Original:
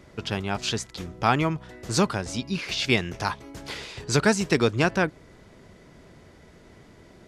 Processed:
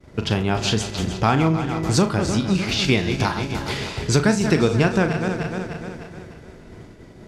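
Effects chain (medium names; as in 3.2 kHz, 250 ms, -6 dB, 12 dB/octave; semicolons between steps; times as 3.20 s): backward echo that repeats 151 ms, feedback 72%, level -11 dB; bass shelf 470 Hz +6.5 dB; flutter echo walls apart 6.4 m, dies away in 0.23 s; compression 2:1, threshold -24 dBFS, peak gain reduction 8 dB; expander -40 dBFS; trim +5.5 dB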